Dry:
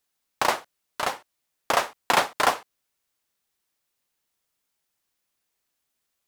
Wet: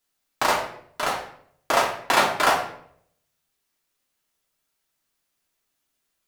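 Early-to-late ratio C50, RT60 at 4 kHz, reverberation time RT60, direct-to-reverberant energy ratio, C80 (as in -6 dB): 6.5 dB, 0.50 s, 0.65 s, -2.5 dB, 10.0 dB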